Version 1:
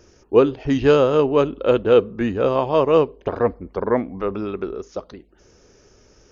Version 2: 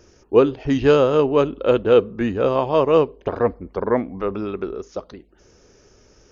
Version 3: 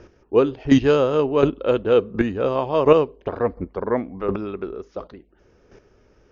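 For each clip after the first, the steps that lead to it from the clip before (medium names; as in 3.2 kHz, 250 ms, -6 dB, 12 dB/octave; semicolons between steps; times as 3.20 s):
no audible change
square tremolo 1.4 Hz, depth 65%, duty 10%; level-controlled noise filter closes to 2.7 kHz, open at -19.5 dBFS; trim +6.5 dB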